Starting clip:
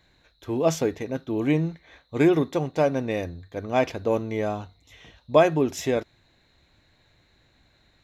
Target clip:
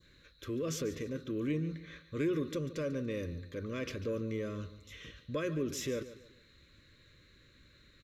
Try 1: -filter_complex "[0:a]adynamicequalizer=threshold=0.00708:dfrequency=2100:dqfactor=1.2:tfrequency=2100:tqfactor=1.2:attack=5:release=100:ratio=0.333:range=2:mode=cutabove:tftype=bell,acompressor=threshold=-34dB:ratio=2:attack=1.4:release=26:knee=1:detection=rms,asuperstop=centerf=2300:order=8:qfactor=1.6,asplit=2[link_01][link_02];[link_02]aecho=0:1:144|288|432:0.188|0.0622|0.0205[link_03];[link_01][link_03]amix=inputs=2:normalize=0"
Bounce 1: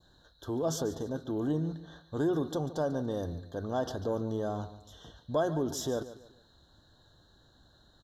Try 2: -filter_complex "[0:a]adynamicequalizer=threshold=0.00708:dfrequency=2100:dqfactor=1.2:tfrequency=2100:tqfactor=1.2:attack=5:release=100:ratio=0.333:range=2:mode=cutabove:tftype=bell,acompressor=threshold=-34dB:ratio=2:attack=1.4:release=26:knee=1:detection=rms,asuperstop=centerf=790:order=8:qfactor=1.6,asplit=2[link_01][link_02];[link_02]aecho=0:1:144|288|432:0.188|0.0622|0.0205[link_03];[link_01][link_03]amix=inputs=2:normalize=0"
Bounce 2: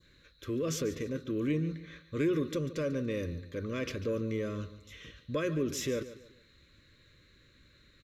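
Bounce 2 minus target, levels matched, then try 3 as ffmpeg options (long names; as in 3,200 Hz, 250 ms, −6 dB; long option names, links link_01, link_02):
downward compressor: peak gain reduction −3 dB
-filter_complex "[0:a]adynamicequalizer=threshold=0.00708:dfrequency=2100:dqfactor=1.2:tfrequency=2100:tqfactor=1.2:attack=5:release=100:ratio=0.333:range=2:mode=cutabove:tftype=bell,acompressor=threshold=-40dB:ratio=2:attack=1.4:release=26:knee=1:detection=rms,asuperstop=centerf=790:order=8:qfactor=1.6,asplit=2[link_01][link_02];[link_02]aecho=0:1:144|288|432:0.188|0.0622|0.0205[link_03];[link_01][link_03]amix=inputs=2:normalize=0"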